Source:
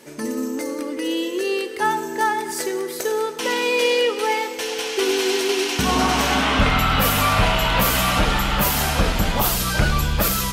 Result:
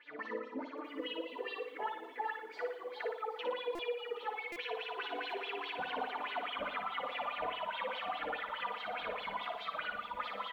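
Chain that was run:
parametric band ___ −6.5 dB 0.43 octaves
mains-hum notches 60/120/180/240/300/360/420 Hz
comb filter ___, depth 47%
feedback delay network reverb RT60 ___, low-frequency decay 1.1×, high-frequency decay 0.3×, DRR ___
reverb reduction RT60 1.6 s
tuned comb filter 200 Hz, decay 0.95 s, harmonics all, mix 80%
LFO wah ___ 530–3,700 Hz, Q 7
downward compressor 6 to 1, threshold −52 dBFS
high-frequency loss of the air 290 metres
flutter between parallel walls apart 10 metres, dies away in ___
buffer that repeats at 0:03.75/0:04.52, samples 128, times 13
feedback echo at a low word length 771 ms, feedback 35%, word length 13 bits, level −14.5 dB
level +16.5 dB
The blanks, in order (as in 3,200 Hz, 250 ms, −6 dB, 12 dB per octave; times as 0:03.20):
5,700 Hz, 4.1 ms, 0.46 s, 0.5 dB, 4.8 Hz, 0.57 s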